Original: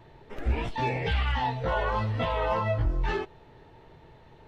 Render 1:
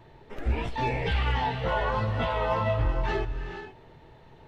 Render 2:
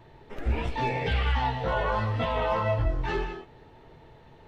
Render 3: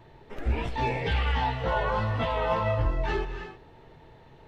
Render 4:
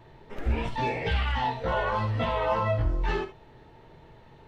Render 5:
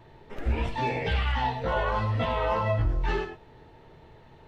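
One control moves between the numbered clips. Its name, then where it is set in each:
non-linear reverb, gate: 500, 220, 340, 90, 130 ms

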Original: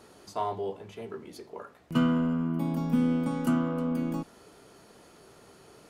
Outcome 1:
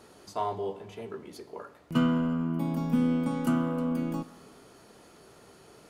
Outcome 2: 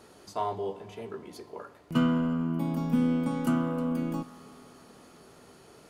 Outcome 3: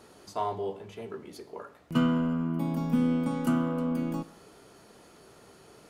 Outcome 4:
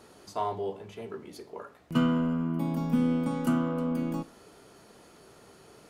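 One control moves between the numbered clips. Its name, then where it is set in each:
Schroeder reverb, RT60: 1.9, 4.5, 0.84, 0.31 s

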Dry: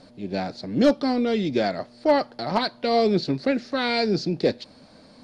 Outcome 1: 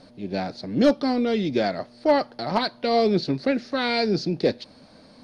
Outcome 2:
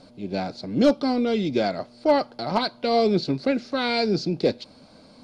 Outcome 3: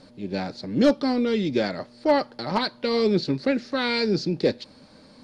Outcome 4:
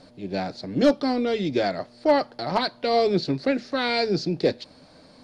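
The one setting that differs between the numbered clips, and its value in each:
notch, frequency: 7400, 1800, 690, 220 Hz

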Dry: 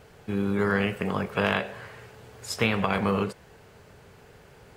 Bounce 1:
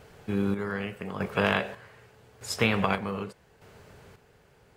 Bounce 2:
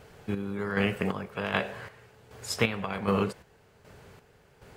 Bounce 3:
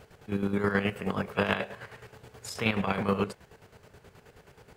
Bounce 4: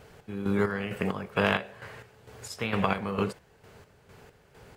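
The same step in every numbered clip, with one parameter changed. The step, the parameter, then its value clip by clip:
chopper, rate: 0.83, 1.3, 9.4, 2.2 Hz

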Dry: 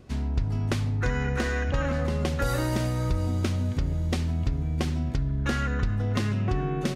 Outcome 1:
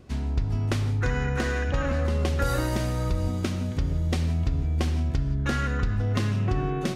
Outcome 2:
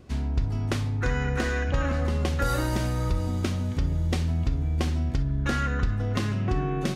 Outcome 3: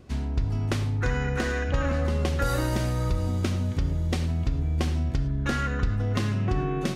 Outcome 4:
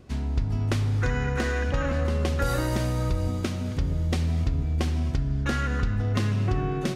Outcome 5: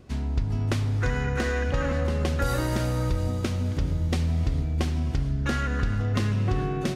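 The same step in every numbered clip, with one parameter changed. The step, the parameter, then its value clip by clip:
non-linear reverb, gate: 200, 80, 130, 300, 480 ms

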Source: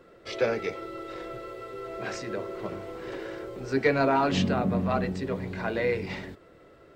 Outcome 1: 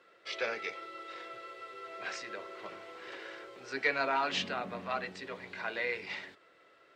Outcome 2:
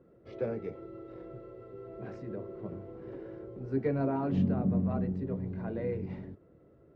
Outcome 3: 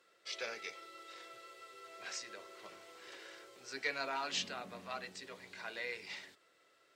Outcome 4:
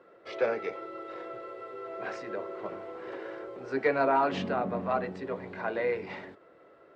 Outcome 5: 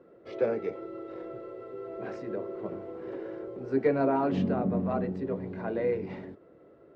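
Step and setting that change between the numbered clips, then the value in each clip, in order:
band-pass, frequency: 2800, 130, 7100, 880, 330 Hz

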